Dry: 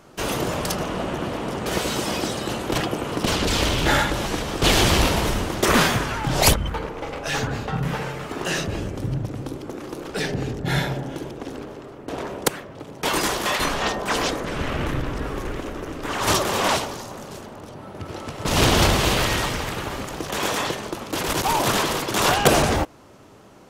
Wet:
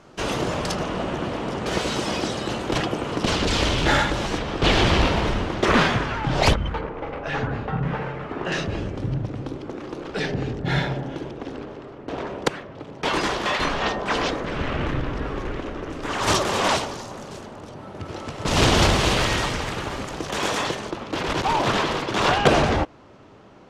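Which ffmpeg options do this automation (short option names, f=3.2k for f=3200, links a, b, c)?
-af "asetnsamples=n=441:p=0,asendcmd='4.38 lowpass f 3800;6.81 lowpass f 2200;8.52 lowpass f 4400;15.9 lowpass f 7800;20.91 lowpass f 4100',lowpass=6.5k"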